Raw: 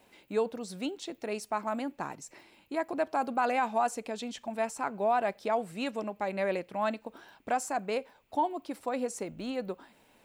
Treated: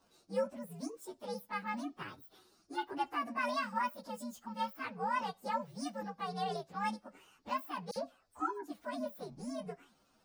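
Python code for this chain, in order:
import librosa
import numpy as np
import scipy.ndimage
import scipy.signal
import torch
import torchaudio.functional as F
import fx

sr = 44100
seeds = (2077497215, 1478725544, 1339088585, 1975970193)

y = fx.partial_stretch(x, sr, pct=130)
y = fx.dispersion(y, sr, late='lows', ms=51.0, hz=2600.0, at=(7.91, 8.68))
y = F.gain(torch.from_numpy(y), -3.5).numpy()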